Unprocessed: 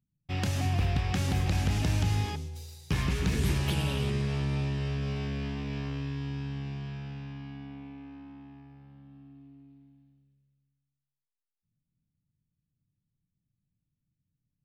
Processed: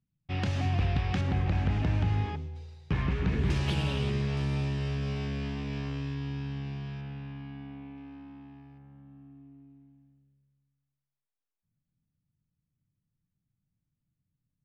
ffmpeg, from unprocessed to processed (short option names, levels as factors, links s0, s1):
-af "asetnsamples=n=441:p=0,asendcmd='1.21 lowpass f 2300;3.5 lowpass f 5800;4.37 lowpass f 11000;6.14 lowpass f 6100;7.01 lowpass f 3400;7.97 lowpass f 5600;8.78 lowpass f 2100',lowpass=4000"